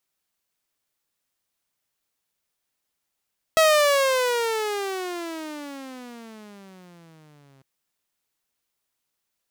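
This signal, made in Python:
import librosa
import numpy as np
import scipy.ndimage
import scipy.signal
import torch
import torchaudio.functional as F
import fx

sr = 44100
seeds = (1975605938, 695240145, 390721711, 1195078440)

y = fx.riser_tone(sr, length_s=4.05, level_db=-11, wave='saw', hz=649.0, rise_st=-27.5, swell_db=-39.5)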